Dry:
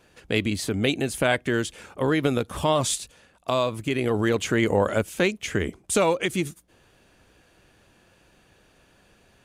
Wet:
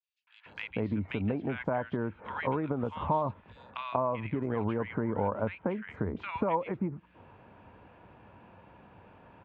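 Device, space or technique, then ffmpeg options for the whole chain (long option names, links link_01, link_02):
bass amplifier: -filter_complex "[0:a]acrossover=split=1600|5700[link_01][link_02][link_03];[link_02]adelay=270[link_04];[link_01]adelay=460[link_05];[link_05][link_04][link_03]amix=inputs=3:normalize=0,acompressor=threshold=-35dB:ratio=4,highpass=73,equalizer=frequency=93:width_type=q:width=4:gain=5,equalizer=frequency=210:width_type=q:width=4:gain=3,equalizer=frequency=360:width_type=q:width=4:gain=-4,equalizer=frequency=940:width_type=q:width=4:gain=10,equalizer=frequency=1800:width_type=q:width=4:gain=-4,lowpass=frequency=2300:width=0.5412,lowpass=frequency=2300:width=1.3066,adynamicequalizer=threshold=0.002:dfrequency=2100:dqfactor=0.7:tfrequency=2100:tqfactor=0.7:attack=5:release=100:ratio=0.375:range=3:mode=cutabove:tftype=highshelf,volume=4.5dB"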